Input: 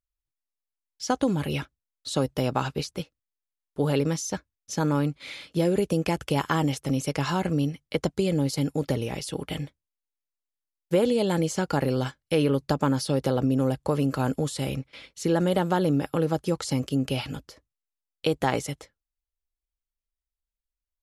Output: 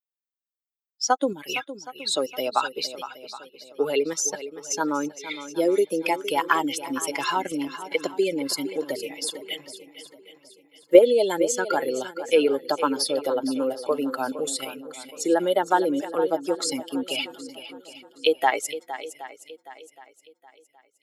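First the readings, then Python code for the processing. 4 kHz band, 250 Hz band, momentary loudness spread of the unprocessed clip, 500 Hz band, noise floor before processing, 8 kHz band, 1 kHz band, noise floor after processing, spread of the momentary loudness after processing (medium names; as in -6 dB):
+5.5 dB, -2.5 dB, 11 LU, +4.5 dB, under -85 dBFS, +7.0 dB, +5.0 dB, -80 dBFS, 17 LU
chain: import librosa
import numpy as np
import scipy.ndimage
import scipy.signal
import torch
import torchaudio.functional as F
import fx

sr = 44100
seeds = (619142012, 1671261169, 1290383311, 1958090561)

p1 = fx.bin_expand(x, sr, power=2.0)
p2 = scipy.signal.sosfilt(scipy.signal.butter(4, 360.0, 'highpass', fs=sr, output='sos'), p1)
p3 = fx.level_steps(p2, sr, step_db=23)
p4 = p2 + (p3 * 10.0 ** (1.0 / 20.0))
p5 = fx.echo_swing(p4, sr, ms=770, ratio=1.5, feedback_pct=32, wet_db=-13.0)
y = p5 * 10.0 ** (8.5 / 20.0)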